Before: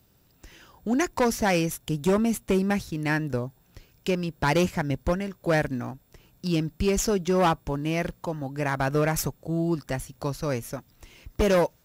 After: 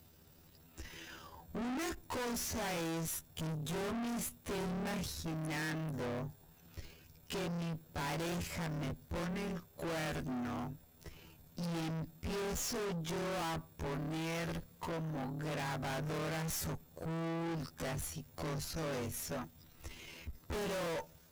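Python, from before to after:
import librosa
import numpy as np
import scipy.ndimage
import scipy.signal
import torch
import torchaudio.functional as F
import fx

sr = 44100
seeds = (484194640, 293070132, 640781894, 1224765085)

y = fx.stretch_grains(x, sr, factor=1.8, grain_ms=55.0)
y = fx.tube_stage(y, sr, drive_db=40.0, bias=0.4)
y = y * 10.0 ** (3.0 / 20.0)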